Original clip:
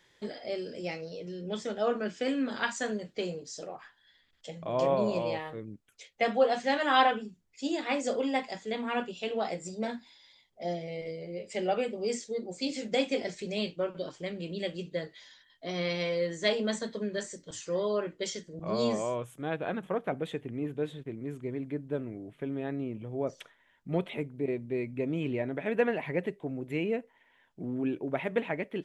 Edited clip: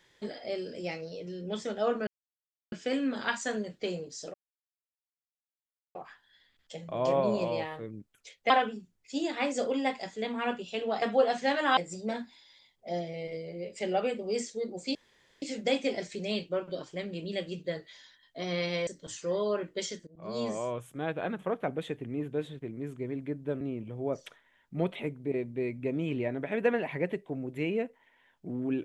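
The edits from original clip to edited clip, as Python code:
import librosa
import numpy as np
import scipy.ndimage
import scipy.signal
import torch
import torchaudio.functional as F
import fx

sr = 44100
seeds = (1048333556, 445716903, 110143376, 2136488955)

y = fx.edit(x, sr, fx.insert_silence(at_s=2.07, length_s=0.65),
    fx.insert_silence(at_s=3.69, length_s=1.61),
    fx.move(start_s=6.24, length_s=0.75, to_s=9.51),
    fx.insert_room_tone(at_s=12.69, length_s=0.47),
    fx.cut(start_s=16.14, length_s=1.17),
    fx.fade_in_from(start_s=18.51, length_s=0.97, curve='qsin', floor_db=-20.5),
    fx.cut(start_s=22.05, length_s=0.7), tone=tone)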